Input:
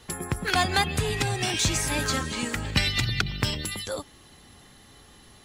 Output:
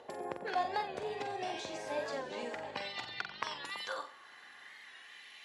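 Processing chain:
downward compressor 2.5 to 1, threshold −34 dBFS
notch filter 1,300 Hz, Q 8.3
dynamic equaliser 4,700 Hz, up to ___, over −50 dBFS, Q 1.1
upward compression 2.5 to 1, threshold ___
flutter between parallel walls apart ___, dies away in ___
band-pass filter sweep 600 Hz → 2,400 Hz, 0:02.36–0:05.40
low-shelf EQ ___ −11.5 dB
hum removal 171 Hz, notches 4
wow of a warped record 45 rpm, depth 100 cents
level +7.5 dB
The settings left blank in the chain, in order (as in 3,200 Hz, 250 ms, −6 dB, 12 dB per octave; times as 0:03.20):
+6 dB, −47 dBFS, 7.8 metres, 0.38 s, 210 Hz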